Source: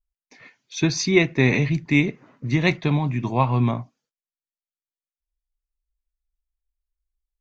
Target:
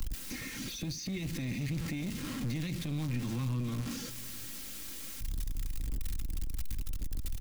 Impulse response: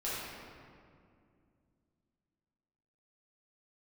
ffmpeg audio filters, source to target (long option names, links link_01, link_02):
-filter_complex "[0:a]aeval=exprs='val(0)+0.5*0.0473*sgn(val(0))':channel_layout=same,equalizer=frequency=690:width=1:gain=-12,aecho=1:1:3.7:0.51,acrossover=split=280|3100[link_01][link_02][link_03];[link_02]acompressor=threshold=-35dB:ratio=6[link_04];[link_01][link_04][link_03]amix=inputs=3:normalize=0,alimiter=limit=-23.5dB:level=0:latency=1:release=29,acrossover=split=140|530[link_05][link_06][link_07];[link_05]acompressor=threshold=-32dB:ratio=4[link_08];[link_06]acompressor=threshold=-40dB:ratio=4[link_09];[link_07]acompressor=threshold=-44dB:ratio=4[link_10];[link_08][link_09][link_10]amix=inputs=3:normalize=0,aeval=exprs='clip(val(0),-1,0.0178)':channel_layout=same,aecho=1:1:630:0.1,volume=1.5dB"